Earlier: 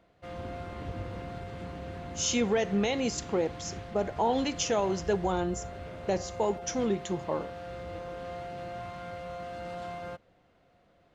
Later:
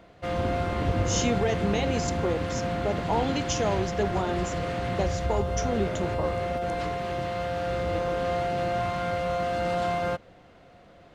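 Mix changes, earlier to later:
speech: entry -1.10 s; background +12.0 dB

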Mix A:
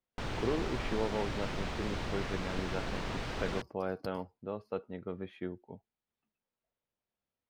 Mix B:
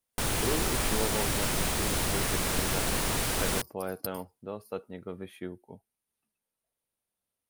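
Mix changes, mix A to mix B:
background +6.0 dB; master: remove air absorption 180 m

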